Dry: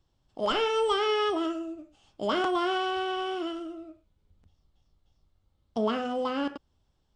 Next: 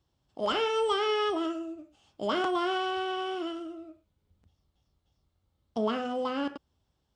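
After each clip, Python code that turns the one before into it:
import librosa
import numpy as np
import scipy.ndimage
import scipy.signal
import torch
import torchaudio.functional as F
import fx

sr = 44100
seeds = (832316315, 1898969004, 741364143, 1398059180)

y = scipy.signal.sosfilt(scipy.signal.butter(2, 54.0, 'highpass', fs=sr, output='sos'), x)
y = y * librosa.db_to_amplitude(-1.5)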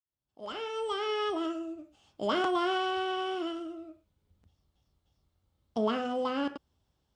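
y = fx.fade_in_head(x, sr, length_s=1.77)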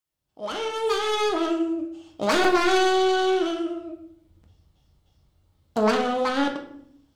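y = fx.self_delay(x, sr, depth_ms=0.25)
y = fx.room_shoebox(y, sr, seeds[0], volume_m3=120.0, walls='mixed', distance_m=0.57)
y = y * librosa.db_to_amplitude(7.5)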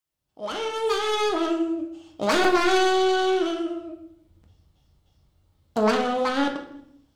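y = fx.echo_feedback(x, sr, ms=162, feedback_pct=34, wet_db=-24.0)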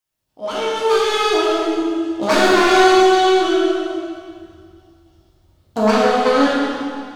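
y = fx.rev_plate(x, sr, seeds[1], rt60_s=2.1, hf_ratio=0.9, predelay_ms=0, drr_db=-5.5)
y = y * librosa.db_to_amplitude(1.5)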